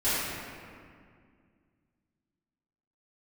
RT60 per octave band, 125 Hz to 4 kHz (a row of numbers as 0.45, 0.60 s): 2.8, 2.8, 2.2, 2.0, 1.9, 1.3 s